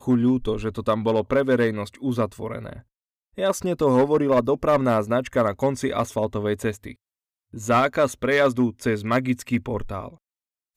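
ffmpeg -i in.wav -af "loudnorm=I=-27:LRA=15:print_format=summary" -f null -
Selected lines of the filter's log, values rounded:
Input Integrated:    -22.9 LUFS
Input True Peak:      -8.0 dBTP
Input LRA:             2.5 LU
Input Threshold:     -33.6 LUFS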